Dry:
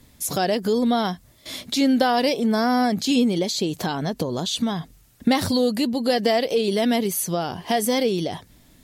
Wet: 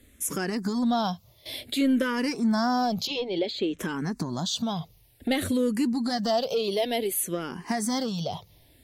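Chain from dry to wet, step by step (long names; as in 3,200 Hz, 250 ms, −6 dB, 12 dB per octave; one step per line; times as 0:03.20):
0:03.07–0:03.79: low-pass filter 5,000 Hz 24 dB per octave
soft clipping −12.5 dBFS, distortion −21 dB
frequency shifter mixed with the dry sound −0.56 Hz
level −1 dB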